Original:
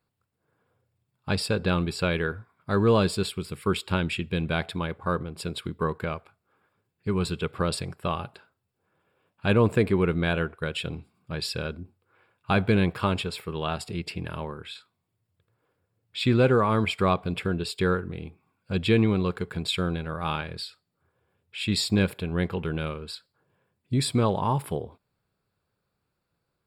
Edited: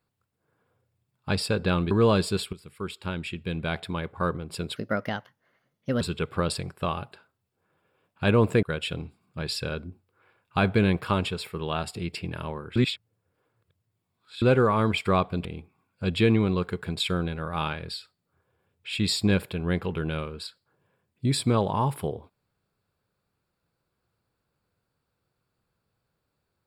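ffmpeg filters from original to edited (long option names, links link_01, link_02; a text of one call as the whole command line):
ffmpeg -i in.wav -filter_complex "[0:a]asplit=9[link_01][link_02][link_03][link_04][link_05][link_06][link_07][link_08][link_09];[link_01]atrim=end=1.912[link_10];[link_02]atrim=start=2.768:end=3.39,asetpts=PTS-STARTPTS,afade=type=out:start_time=0.618:duration=0.004:curve=hsin:silence=0.223872[link_11];[link_03]atrim=start=3.39:end=5.624,asetpts=PTS-STARTPTS,afade=type=in:duration=1.71:silence=0.223872[link_12];[link_04]atrim=start=5.62:end=7.23,asetpts=PTS-STARTPTS,asetrate=56889,aresample=44100[link_13];[link_05]atrim=start=7.226:end=9.852[link_14];[link_06]atrim=start=10.558:end=14.692[link_15];[link_07]atrim=start=14.688:end=16.352,asetpts=PTS-STARTPTS,areverse[link_16];[link_08]atrim=start=16.348:end=17.382[link_17];[link_09]atrim=start=18.128[link_18];[link_11][link_12]concat=n=2:v=0:a=1[link_19];[link_10][link_19]acrossfade=duration=0.004:curve1=hsin:curve2=hsin[link_20];[link_20][link_13]acrossfade=duration=0.004:curve1=hsin:curve2=hsin[link_21];[link_21][link_14]acrossfade=duration=0.004:curve1=hsin:curve2=hsin[link_22];[link_22][link_15]acrossfade=duration=0.004:curve1=hsin:curve2=hsin[link_23];[link_23][link_16]acrossfade=duration=0.004:curve1=hsin:curve2=hsin[link_24];[link_24][link_17]acrossfade=duration=0.004:curve1=hsin:curve2=hsin[link_25];[link_25][link_18]acrossfade=duration=0.004:curve1=hsin:curve2=hsin" out.wav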